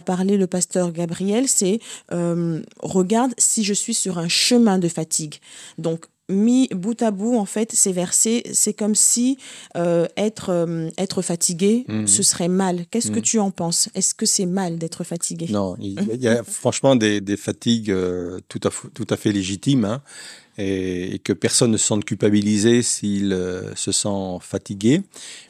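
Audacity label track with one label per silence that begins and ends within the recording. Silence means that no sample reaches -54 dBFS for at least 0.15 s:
6.100000	6.290000	silence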